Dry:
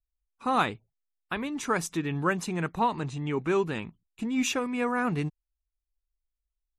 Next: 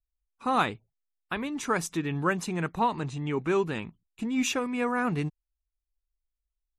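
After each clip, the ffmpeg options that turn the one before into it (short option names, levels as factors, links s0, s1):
-af anull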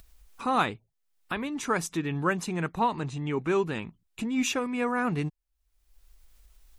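-af "acompressor=mode=upward:threshold=0.0251:ratio=2.5"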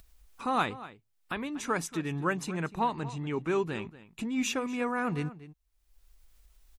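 -filter_complex "[0:a]asplit=2[s0][s1];[s1]adelay=239.1,volume=0.158,highshelf=f=4000:g=-5.38[s2];[s0][s2]amix=inputs=2:normalize=0,volume=0.708"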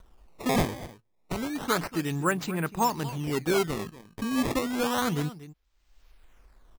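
-af "acrusher=samples=18:mix=1:aa=0.000001:lfo=1:lforange=28.8:lforate=0.3,volume=1.5"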